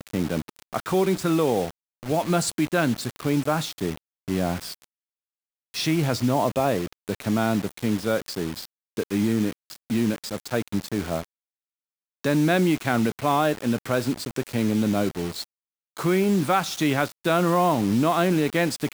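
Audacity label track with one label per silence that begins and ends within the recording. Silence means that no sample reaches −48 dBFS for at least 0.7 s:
4.840000	5.740000	silence
11.240000	12.240000	silence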